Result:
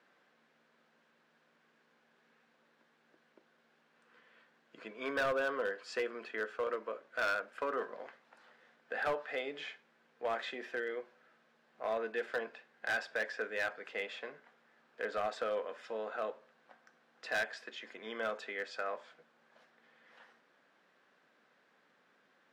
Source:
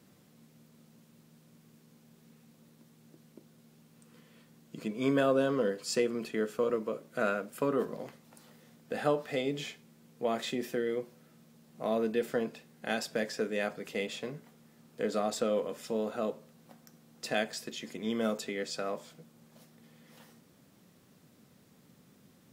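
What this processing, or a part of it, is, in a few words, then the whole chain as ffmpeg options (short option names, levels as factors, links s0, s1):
megaphone: -af "highpass=640,lowpass=2700,equalizer=f=1600:t=o:w=0.33:g=8,asoftclip=type=hard:threshold=0.0398"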